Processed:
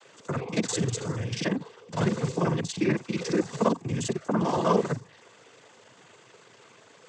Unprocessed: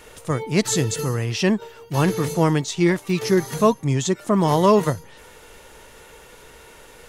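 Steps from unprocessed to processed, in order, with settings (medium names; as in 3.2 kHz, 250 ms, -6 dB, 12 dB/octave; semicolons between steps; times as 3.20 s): time reversed locally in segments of 40 ms; noise-vocoded speech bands 16; trim -6.5 dB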